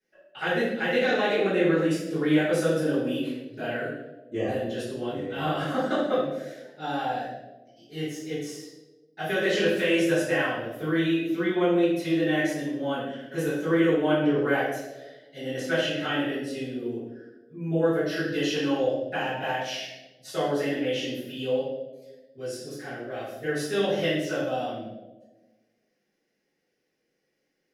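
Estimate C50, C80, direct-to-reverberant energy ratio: 0.5 dB, 3.5 dB, -14.0 dB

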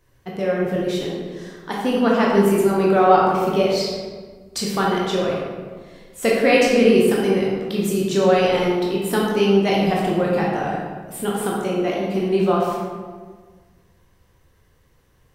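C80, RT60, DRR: 2.0 dB, 1.5 s, -4.5 dB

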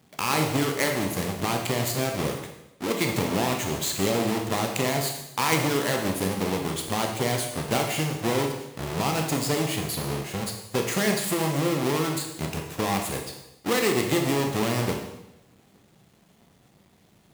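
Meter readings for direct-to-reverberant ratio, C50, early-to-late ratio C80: 2.5 dB, 5.5 dB, 8.0 dB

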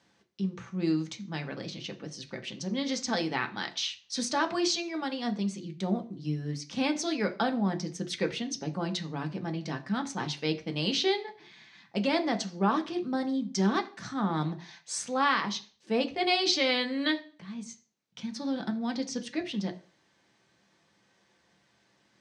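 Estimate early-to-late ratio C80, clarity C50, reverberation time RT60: 20.5 dB, 15.5 dB, 0.40 s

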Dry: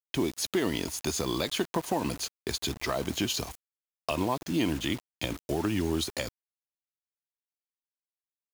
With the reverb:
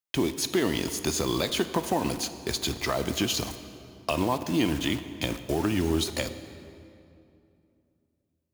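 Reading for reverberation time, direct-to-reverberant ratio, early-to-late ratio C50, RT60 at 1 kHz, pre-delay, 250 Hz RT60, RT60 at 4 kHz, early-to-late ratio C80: 2.7 s, 10.5 dB, 11.5 dB, 2.5 s, 16 ms, 3.2 s, 1.8 s, 12.5 dB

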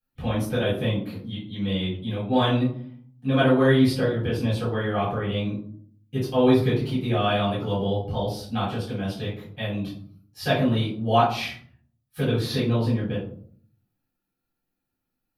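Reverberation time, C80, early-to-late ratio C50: 0.55 s, 9.0 dB, 4.5 dB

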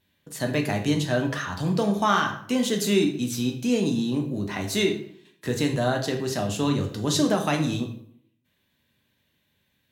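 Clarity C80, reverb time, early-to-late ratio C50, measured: 12.5 dB, 0.65 s, 9.5 dB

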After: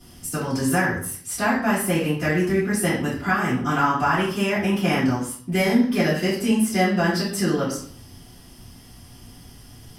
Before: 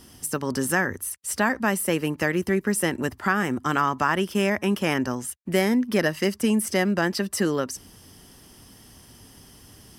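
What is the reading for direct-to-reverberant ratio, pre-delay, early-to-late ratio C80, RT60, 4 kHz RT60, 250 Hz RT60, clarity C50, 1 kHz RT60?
-14.5 dB, 3 ms, 9.0 dB, 0.55 s, 0.50 s, 0.70 s, 4.0 dB, 0.55 s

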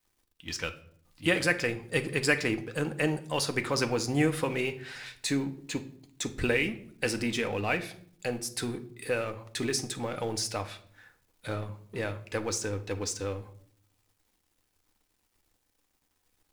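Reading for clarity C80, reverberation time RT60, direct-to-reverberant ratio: 19.0 dB, 0.60 s, 7.0 dB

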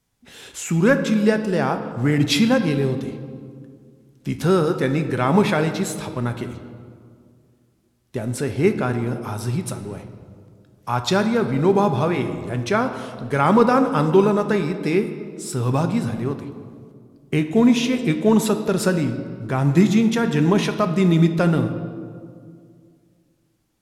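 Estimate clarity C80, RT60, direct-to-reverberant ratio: 11.0 dB, 2.2 s, 6.5 dB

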